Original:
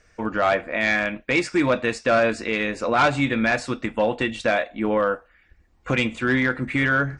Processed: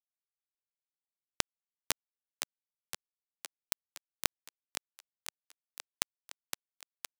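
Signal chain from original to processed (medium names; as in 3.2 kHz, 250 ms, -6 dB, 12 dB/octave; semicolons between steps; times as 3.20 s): frequency axis rescaled in octaves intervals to 108%; fifteen-band graphic EQ 160 Hz +6 dB, 400 Hz -7 dB, 4 kHz +9 dB; reverse; compression 16:1, threshold -30 dBFS, peak gain reduction 14.5 dB; reverse; high-order bell 1.6 kHz -10 dB; bit crusher 4-bit; on a send: thinning echo 514 ms, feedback 65%, high-pass 340 Hz, level -7.5 dB; on the sum: trim +15.5 dB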